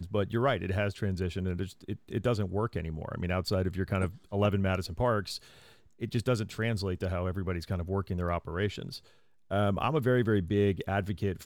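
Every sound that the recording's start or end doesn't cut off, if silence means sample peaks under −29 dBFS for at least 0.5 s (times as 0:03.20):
0:06.02–0:08.82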